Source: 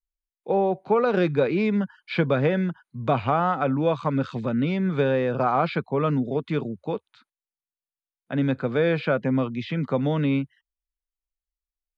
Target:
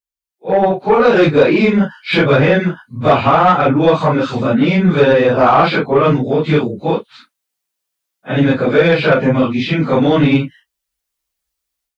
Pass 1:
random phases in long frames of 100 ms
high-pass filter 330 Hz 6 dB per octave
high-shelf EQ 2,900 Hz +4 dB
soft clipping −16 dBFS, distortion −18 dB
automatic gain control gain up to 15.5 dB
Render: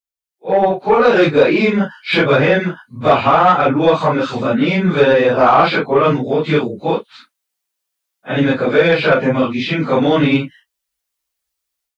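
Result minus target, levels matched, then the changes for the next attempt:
125 Hz band −3.0 dB
change: high-pass filter 140 Hz 6 dB per octave

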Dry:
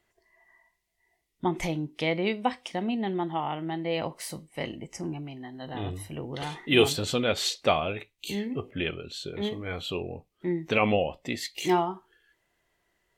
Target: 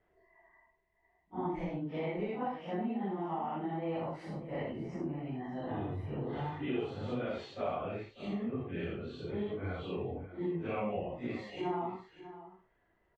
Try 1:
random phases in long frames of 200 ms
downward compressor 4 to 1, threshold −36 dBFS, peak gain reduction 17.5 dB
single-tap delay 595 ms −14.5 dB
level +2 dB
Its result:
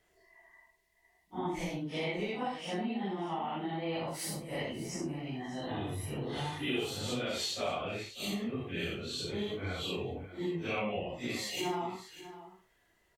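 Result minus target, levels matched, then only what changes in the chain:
2,000 Hz band +5.5 dB
add after downward compressor: low-pass filter 1,500 Hz 12 dB per octave

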